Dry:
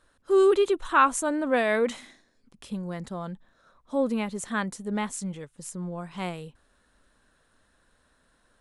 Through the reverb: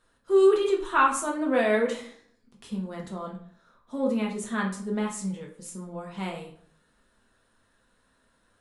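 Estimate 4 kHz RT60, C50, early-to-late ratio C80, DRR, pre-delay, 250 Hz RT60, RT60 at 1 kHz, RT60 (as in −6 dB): 0.40 s, 7.5 dB, 11.5 dB, −1.5 dB, 3 ms, 0.60 s, 0.55 s, 0.60 s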